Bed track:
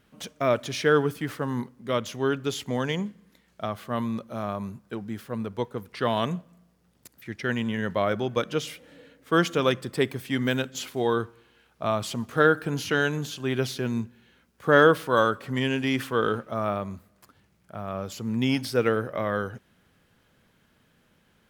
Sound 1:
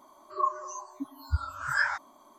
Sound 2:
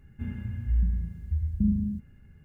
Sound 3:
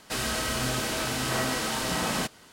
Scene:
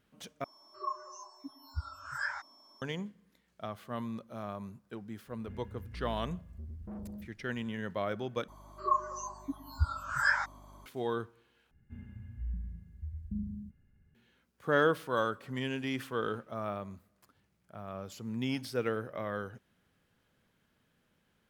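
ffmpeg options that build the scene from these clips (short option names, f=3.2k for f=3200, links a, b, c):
-filter_complex "[1:a]asplit=2[a][b];[2:a]asplit=2[c][d];[0:a]volume=-9.5dB[e];[a]aeval=exprs='val(0)+0.00316*sin(2*PI*5400*n/s)':c=same[f];[c]asoftclip=type=tanh:threshold=-30.5dB[g];[b]aeval=exprs='val(0)+0.00224*(sin(2*PI*50*n/s)+sin(2*PI*2*50*n/s)/2+sin(2*PI*3*50*n/s)/3+sin(2*PI*4*50*n/s)/4+sin(2*PI*5*50*n/s)/5)':c=same[h];[e]asplit=4[i][j][k][l];[i]atrim=end=0.444[m];[f]atrim=end=2.38,asetpts=PTS-STARTPTS,volume=-9dB[n];[j]atrim=start=2.816:end=8.484[o];[h]atrim=end=2.38,asetpts=PTS-STARTPTS,volume=-1dB[p];[k]atrim=start=10.856:end=11.714[q];[d]atrim=end=2.44,asetpts=PTS-STARTPTS,volume=-13dB[r];[l]atrim=start=14.146[s];[g]atrim=end=2.44,asetpts=PTS-STARTPTS,volume=-10dB,afade=t=in:d=0.004:c=hsin,afade=t=out:st=2.436:d=0.004:c=hsin,adelay=5270[t];[m][n]acrossfade=d=0.004:c1=hsin:c2=hsin[u];[u][o]acrossfade=d=0.004:c1=hsin:c2=hsin[v];[v][p]acrossfade=d=0.004:c1=hsin:c2=hsin[w];[w][q]acrossfade=d=0.004:c1=hsin:c2=hsin[x];[x][r]acrossfade=d=0.004:c1=hsin:c2=hsin[y];[y][s]acrossfade=d=0.004:c1=hsin:c2=hsin[z];[z][t]amix=inputs=2:normalize=0"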